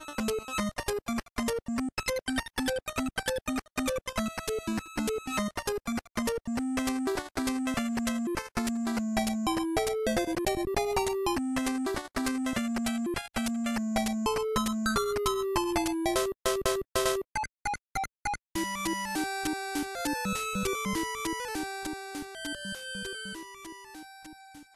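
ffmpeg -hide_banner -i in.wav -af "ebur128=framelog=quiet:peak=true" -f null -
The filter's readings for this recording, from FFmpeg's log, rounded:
Integrated loudness:
  I:         -31.2 LUFS
  Threshold: -41.4 LUFS
Loudness range:
  LRA:         3.6 LU
  Threshold: -51.2 LUFS
  LRA low:   -32.9 LUFS
  LRA high:  -29.2 LUFS
True peak:
  Peak:      -11.6 dBFS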